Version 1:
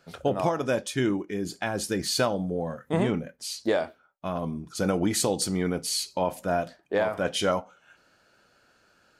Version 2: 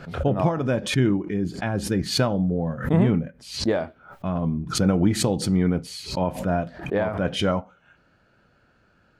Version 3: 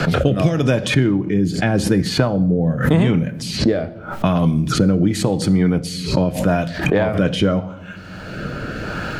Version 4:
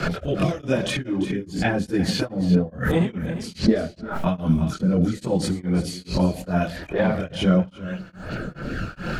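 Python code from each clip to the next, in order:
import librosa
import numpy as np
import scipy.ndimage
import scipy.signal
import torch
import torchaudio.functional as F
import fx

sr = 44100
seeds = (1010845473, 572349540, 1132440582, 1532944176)

y1 = fx.bass_treble(x, sr, bass_db=11, treble_db=-13)
y1 = fx.pre_swell(y1, sr, db_per_s=110.0)
y2 = fx.room_shoebox(y1, sr, seeds[0], volume_m3=2100.0, walls='furnished', distance_m=0.51)
y2 = fx.rotary(y2, sr, hz=0.85)
y2 = fx.band_squash(y2, sr, depth_pct=100)
y2 = F.gain(torch.from_numpy(y2), 7.0).numpy()
y3 = fx.chorus_voices(y2, sr, voices=6, hz=1.0, base_ms=25, depth_ms=3.0, mix_pct=65)
y3 = y3 + 10.0 ** (-14.0 / 20.0) * np.pad(y3, (int(346 * sr / 1000.0), 0))[:len(y3)]
y3 = y3 * np.abs(np.cos(np.pi * 2.4 * np.arange(len(y3)) / sr))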